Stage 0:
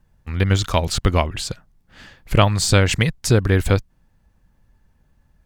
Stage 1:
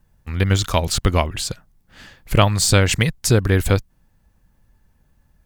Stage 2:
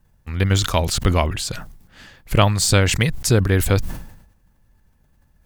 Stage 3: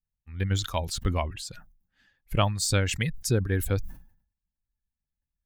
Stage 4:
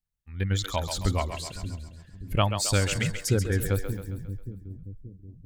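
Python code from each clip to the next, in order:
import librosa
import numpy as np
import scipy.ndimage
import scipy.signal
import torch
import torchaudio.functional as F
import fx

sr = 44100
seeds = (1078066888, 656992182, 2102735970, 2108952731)

y1 = fx.high_shelf(x, sr, hz=8600.0, db=8.5)
y2 = fx.sustainer(y1, sr, db_per_s=71.0)
y2 = y2 * librosa.db_to_amplitude(-1.0)
y3 = fx.bin_expand(y2, sr, power=1.5)
y3 = y3 * librosa.db_to_amplitude(-7.0)
y4 = fx.echo_split(y3, sr, split_hz=320.0, low_ms=578, high_ms=135, feedback_pct=52, wet_db=-8)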